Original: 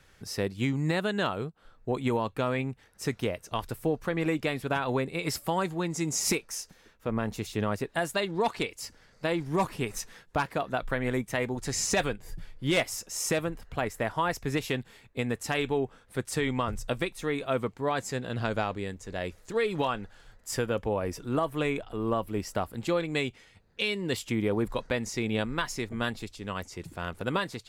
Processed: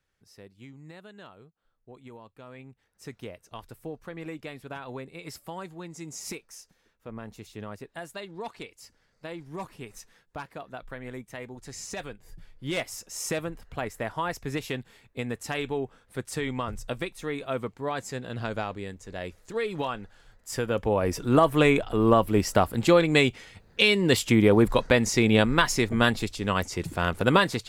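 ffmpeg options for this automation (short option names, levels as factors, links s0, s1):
-af "volume=2.82,afade=t=in:st=2.4:d=0.8:silence=0.354813,afade=t=in:st=12.01:d=1.23:silence=0.398107,afade=t=in:st=20.49:d=0.97:silence=0.281838"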